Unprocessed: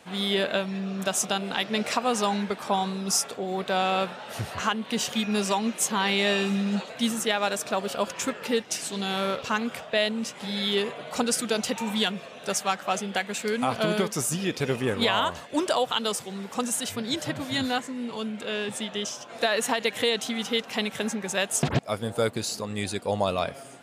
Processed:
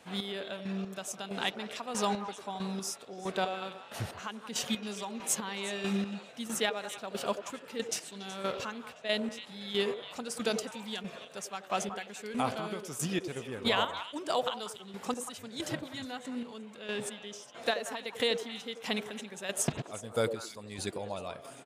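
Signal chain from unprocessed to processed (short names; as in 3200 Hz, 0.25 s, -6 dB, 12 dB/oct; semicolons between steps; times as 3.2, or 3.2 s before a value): chopper 1.4 Hz, depth 65%, duty 30%; delay with a stepping band-pass 0.101 s, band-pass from 420 Hz, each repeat 1.4 oct, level -5.5 dB; tempo 1.1×; gain -4.5 dB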